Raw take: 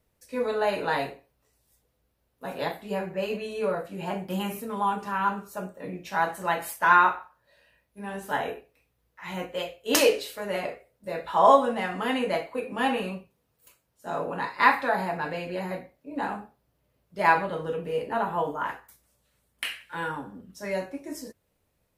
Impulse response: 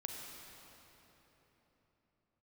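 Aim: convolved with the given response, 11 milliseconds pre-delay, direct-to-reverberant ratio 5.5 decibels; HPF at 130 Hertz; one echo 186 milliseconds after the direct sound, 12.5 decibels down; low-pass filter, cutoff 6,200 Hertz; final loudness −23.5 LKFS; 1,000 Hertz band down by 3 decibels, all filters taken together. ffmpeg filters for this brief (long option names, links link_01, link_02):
-filter_complex "[0:a]highpass=130,lowpass=6200,equalizer=frequency=1000:width_type=o:gain=-3.5,aecho=1:1:186:0.237,asplit=2[link_01][link_02];[1:a]atrim=start_sample=2205,adelay=11[link_03];[link_02][link_03]afir=irnorm=-1:irlink=0,volume=-4.5dB[link_04];[link_01][link_04]amix=inputs=2:normalize=0,volume=4.5dB"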